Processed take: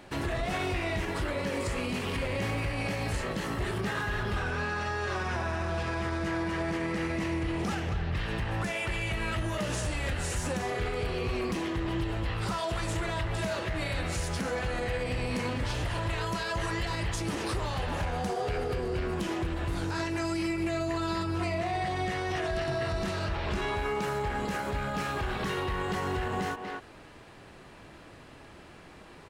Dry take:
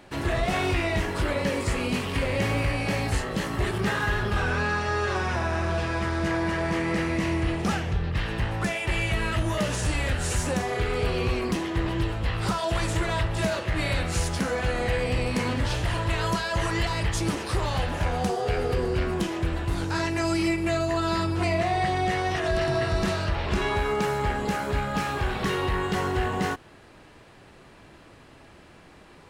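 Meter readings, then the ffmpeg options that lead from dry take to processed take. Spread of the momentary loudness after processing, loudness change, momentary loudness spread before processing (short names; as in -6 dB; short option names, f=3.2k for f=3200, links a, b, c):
2 LU, -5.0 dB, 3 LU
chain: -filter_complex "[0:a]asplit=2[a][b];[b]adelay=240,highpass=300,lowpass=3.4k,asoftclip=type=hard:threshold=-24dB,volume=-8dB[c];[a][c]amix=inputs=2:normalize=0,alimiter=limit=-23dB:level=0:latency=1:release=120"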